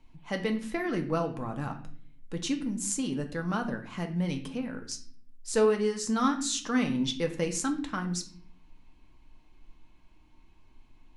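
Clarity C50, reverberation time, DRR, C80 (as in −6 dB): 11.5 dB, 0.50 s, 4.0 dB, 14.5 dB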